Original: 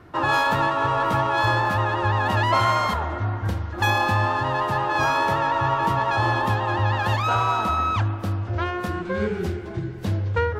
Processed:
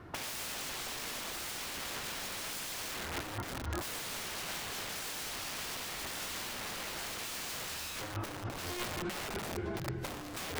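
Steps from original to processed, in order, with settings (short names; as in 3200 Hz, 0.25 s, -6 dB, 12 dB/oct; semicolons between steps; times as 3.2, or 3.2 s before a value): wrapped overs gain 23 dB; negative-ratio compressor -31 dBFS, ratio -0.5; gain -7.5 dB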